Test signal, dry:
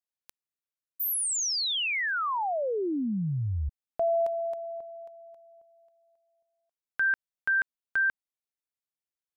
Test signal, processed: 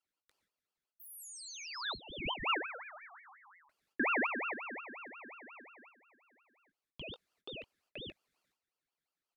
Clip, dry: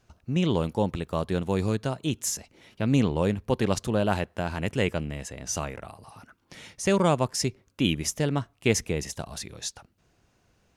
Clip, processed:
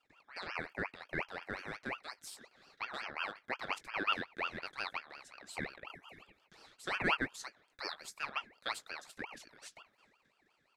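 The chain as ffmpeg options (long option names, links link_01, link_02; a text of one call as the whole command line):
ffmpeg -i in.wav -filter_complex "[0:a]agate=range=-26dB:threshold=-57dB:ratio=3:release=208:detection=rms,highshelf=frequency=4300:gain=4,areverse,acompressor=mode=upward:threshold=-38dB:ratio=2.5:attack=0.24:release=39:knee=2.83:detection=peak,areverse,crystalizer=i=1.5:c=0,asplit=3[link_01][link_02][link_03];[link_01]bandpass=frequency=730:width_type=q:width=8,volume=0dB[link_04];[link_02]bandpass=frequency=1090:width_type=q:width=8,volume=-6dB[link_05];[link_03]bandpass=frequency=2440:width_type=q:width=8,volume=-9dB[link_06];[link_04][link_05][link_06]amix=inputs=3:normalize=0,asplit=2[link_07][link_08];[link_08]adelay=20,volume=-12dB[link_09];[link_07][link_09]amix=inputs=2:normalize=0,aeval=exprs='val(0)*sin(2*PI*1500*n/s+1500*0.4/5.6*sin(2*PI*5.6*n/s))':channel_layout=same,volume=2dB" out.wav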